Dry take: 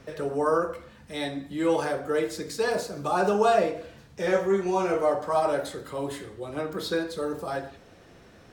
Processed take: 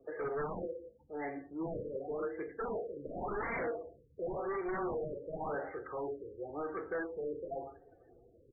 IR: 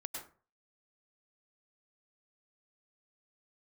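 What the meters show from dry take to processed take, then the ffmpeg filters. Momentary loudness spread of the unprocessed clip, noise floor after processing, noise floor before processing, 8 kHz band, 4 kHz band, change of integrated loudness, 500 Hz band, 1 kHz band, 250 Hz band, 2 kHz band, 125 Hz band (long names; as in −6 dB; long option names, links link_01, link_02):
11 LU, −64 dBFS, −53 dBFS, below −35 dB, below −40 dB, −12.5 dB, −12.0 dB, −13.5 dB, −12.0 dB, −10.0 dB, −11.0 dB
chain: -filter_complex "[0:a]bandreject=frequency=192.1:width_type=h:width=4,bandreject=frequency=384.2:width_type=h:width=4,bandreject=frequency=576.3:width_type=h:width=4,afftdn=noise_reduction=33:noise_floor=-48,acrossover=split=300 3500:gain=0.1 1 0.158[link_01][link_02][link_03];[link_01][link_02][link_03]amix=inputs=3:normalize=0,aecho=1:1:2.5:0.53,asubboost=boost=4:cutoff=150,aresample=16000,aeval=exprs='0.0501*(abs(mod(val(0)/0.0501+3,4)-2)-1)':channel_layout=same,aresample=44100,flanger=delay=3:depth=5.6:regen=76:speed=0.3:shape=triangular,asoftclip=type=tanh:threshold=-34dB,afftfilt=real='re*lt(b*sr/1024,580*pow(2400/580,0.5+0.5*sin(2*PI*0.91*pts/sr)))':imag='im*lt(b*sr/1024,580*pow(2400/580,0.5+0.5*sin(2*PI*0.91*pts/sr)))':win_size=1024:overlap=0.75,volume=2.5dB"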